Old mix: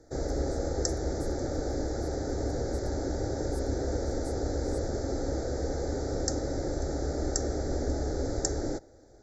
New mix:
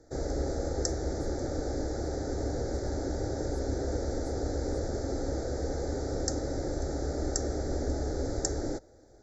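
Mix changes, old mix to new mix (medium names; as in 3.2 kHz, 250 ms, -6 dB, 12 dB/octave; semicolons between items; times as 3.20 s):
speech: add low-pass 2 kHz 6 dB/octave; reverb: off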